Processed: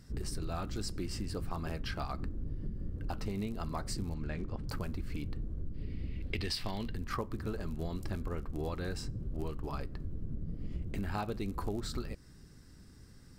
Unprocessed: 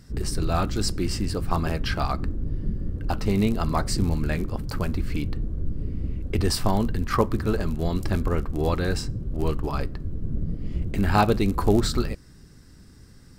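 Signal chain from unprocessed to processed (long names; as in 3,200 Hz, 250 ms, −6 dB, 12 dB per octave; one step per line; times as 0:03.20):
0:05.74–0:06.94: flat-topped bell 3,000 Hz +11.5 dB
downward compressor, threshold −27 dBFS, peak gain reduction 12.5 dB
0:04.14–0:04.69: high-frequency loss of the air 94 metres
level −6 dB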